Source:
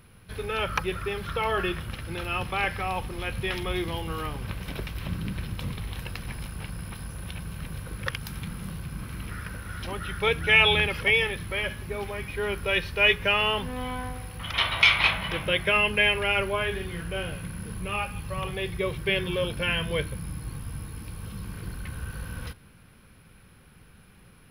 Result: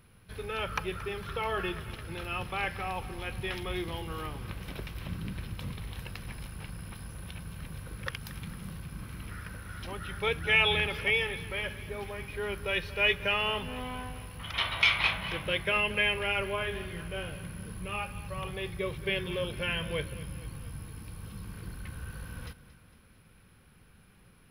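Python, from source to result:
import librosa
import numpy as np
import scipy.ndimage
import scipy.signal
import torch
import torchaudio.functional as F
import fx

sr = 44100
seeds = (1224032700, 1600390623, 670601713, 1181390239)

y = fx.echo_feedback(x, sr, ms=227, feedback_pct=56, wet_db=-16.5)
y = y * librosa.db_to_amplitude(-5.5)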